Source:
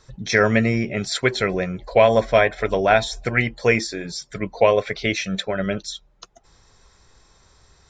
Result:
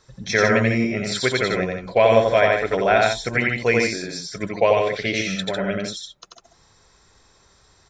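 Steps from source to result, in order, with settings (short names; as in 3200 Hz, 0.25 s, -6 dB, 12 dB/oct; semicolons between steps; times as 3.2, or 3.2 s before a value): low shelf 68 Hz -9 dB; loudspeakers at several distances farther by 30 m -2 dB, 52 m -6 dB; gain -2 dB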